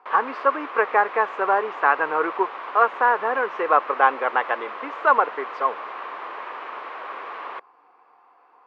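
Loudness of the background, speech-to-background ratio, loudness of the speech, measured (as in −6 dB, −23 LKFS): −34.0 LKFS, 12.0 dB, −22.0 LKFS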